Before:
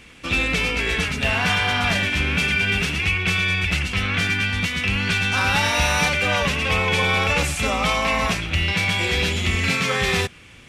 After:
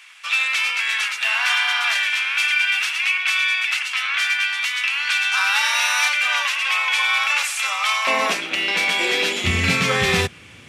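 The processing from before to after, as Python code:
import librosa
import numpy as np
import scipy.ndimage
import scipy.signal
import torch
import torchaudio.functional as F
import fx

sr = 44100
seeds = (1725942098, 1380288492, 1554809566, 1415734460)

y = fx.highpass(x, sr, hz=fx.steps((0.0, 1000.0), (8.07, 280.0), (9.44, 78.0)), slope=24)
y = y * librosa.db_to_amplitude(2.5)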